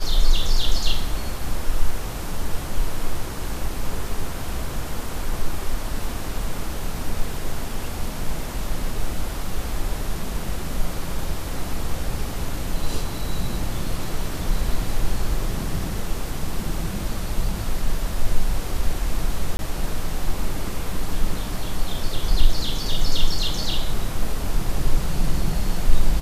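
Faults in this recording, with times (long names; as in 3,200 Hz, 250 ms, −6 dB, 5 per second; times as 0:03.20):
0:19.57–0:19.59: drop-out 21 ms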